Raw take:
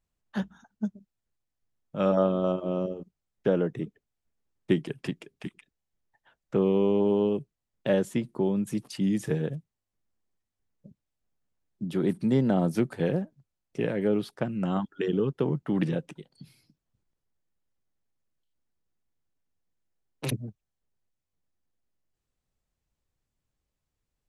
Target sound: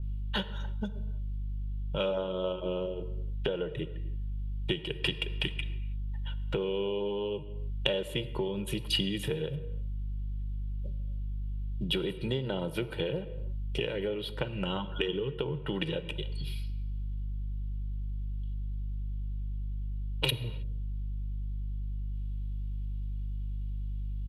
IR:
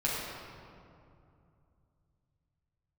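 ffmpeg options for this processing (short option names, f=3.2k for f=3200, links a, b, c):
-filter_complex "[0:a]aeval=exprs='val(0)+0.00708*(sin(2*PI*50*n/s)+sin(2*PI*2*50*n/s)/2+sin(2*PI*3*50*n/s)/3+sin(2*PI*4*50*n/s)/4+sin(2*PI*5*50*n/s)/5)':c=same,aecho=1:1:2.1:0.72,adynamicequalizer=threshold=0.00224:dfrequency=6000:dqfactor=0.71:tfrequency=6000:tqfactor=0.71:attack=5:release=100:ratio=0.375:range=3:mode=cutabove:tftype=bell,acompressor=threshold=-37dB:ratio=6,highshelf=f=4.3k:t=q:w=3:g=-13.5,aexciter=amount=2.4:drive=9.2:freq=3k,asplit=2[a][b];[1:a]atrim=start_sample=2205,afade=t=out:st=0.38:d=0.01,atrim=end_sample=17199[c];[b][c]afir=irnorm=-1:irlink=0,volume=-18.5dB[d];[a][d]amix=inputs=2:normalize=0,volume=5.5dB"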